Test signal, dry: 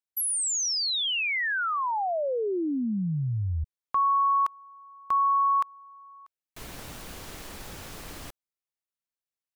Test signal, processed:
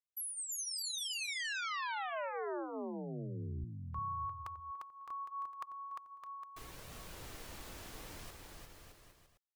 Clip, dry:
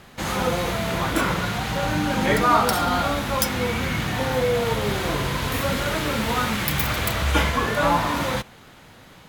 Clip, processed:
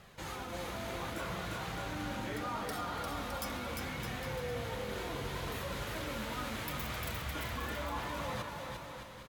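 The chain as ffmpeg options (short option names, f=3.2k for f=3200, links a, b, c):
-af "areverse,acompressor=threshold=-33dB:ratio=4:attack=53:release=71:knee=6:detection=rms,areverse,flanger=delay=1.5:depth=2.1:regen=-42:speed=0.72:shape=triangular,aecho=1:1:350|612.5|809.4|957|1068:0.631|0.398|0.251|0.158|0.1,volume=-6dB"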